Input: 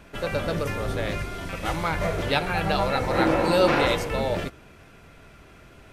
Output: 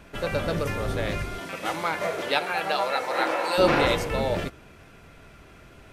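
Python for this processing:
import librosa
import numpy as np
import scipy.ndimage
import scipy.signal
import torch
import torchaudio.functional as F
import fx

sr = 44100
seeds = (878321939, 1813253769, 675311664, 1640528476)

y = fx.highpass(x, sr, hz=fx.line((1.38, 210.0), (3.57, 710.0)), slope=12, at=(1.38, 3.57), fade=0.02)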